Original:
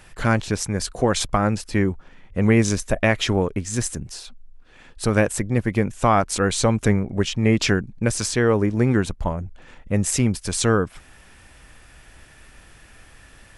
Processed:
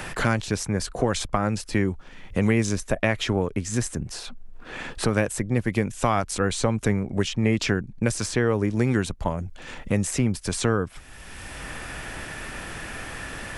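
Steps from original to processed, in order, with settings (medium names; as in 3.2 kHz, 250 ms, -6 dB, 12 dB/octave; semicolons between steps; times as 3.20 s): three bands compressed up and down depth 70%; trim -3.5 dB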